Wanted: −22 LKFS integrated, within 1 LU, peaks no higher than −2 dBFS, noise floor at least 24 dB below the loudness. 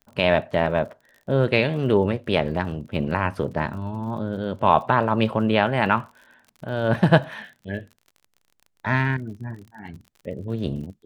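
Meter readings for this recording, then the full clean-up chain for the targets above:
crackle rate 38 per second; integrated loudness −23.0 LKFS; sample peak −1.5 dBFS; target loudness −22.0 LKFS
→ click removal
level +1 dB
brickwall limiter −2 dBFS

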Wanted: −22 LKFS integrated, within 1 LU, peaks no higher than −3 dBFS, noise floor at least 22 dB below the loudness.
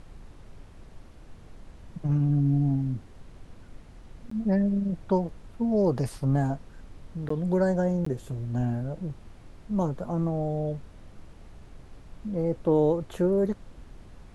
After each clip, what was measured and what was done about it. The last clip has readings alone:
number of dropouts 3; longest dropout 14 ms; background noise floor −49 dBFS; target noise floor −50 dBFS; integrated loudness −27.5 LKFS; sample peak −12.5 dBFS; target loudness −22.0 LKFS
→ repair the gap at 0:04.30/0:07.29/0:08.05, 14 ms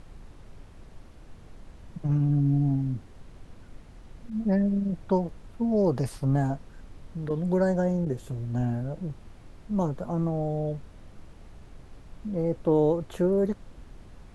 number of dropouts 0; background noise floor −49 dBFS; target noise floor −50 dBFS
→ noise reduction from a noise print 6 dB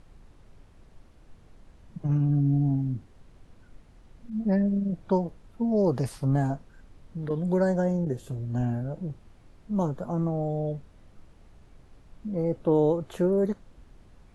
background noise floor −55 dBFS; integrated loudness −27.5 LKFS; sample peak −12.5 dBFS; target loudness −22.0 LKFS
→ level +5.5 dB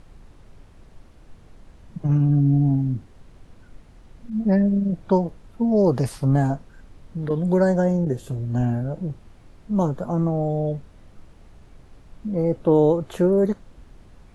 integrated loudness −22.0 LKFS; sample peak −7.0 dBFS; background noise floor −50 dBFS

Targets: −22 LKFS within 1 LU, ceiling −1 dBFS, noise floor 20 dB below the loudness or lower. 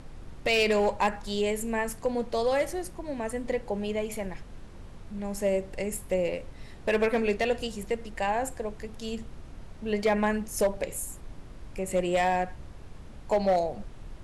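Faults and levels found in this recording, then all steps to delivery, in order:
share of clipped samples 0.5%; peaks flattened at −18.0 dBFS; background noise floor −45 dBFS; target noise floor −49 dBFS; integrated loudness −29.0 LKFS; sample peak −18.0 dBFS; target loudness −22.0 LKFS
→ clipped peaks rebuilt −18 dBFS
noise reduction from a noise print 6 dB
level +7 dB

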